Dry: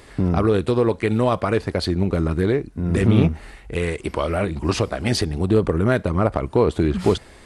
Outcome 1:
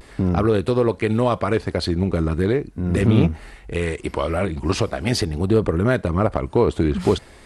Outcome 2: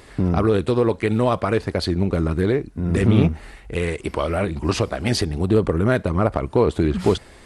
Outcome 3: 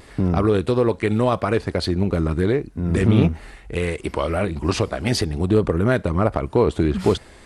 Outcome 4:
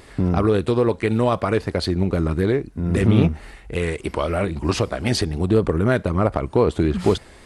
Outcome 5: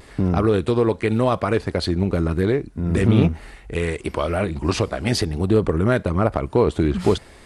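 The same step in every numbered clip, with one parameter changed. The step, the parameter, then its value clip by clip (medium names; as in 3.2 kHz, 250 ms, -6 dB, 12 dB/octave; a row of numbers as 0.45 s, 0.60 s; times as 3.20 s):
vibrato, rate: 0.42 Hz, 16 Hz, 1.6 Hz, 3.8 Hz, 0.99 Hz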